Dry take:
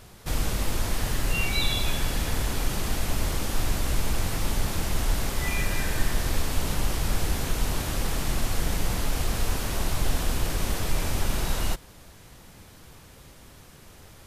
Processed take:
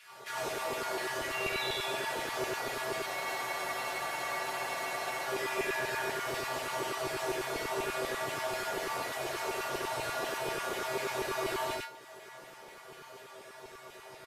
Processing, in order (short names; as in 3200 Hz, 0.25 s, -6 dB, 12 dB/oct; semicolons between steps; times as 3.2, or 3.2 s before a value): resonator 130 Hz, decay 0.31 s, harmonics odd, mix 90%; LFO high-pass saw down 4.1 Hz 380–2400 Hz; loudspeakers at several distances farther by 21 m -9 dB, 33 m -2 dB; in parallel at +0.5 dB: compressor, threshold -55 dBFS, peak gain reduction 17.5 dB; on the sum: tilt -2.5 dB/oct; spectral freeze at 3.09, 2.16 s; gain +6.5 dB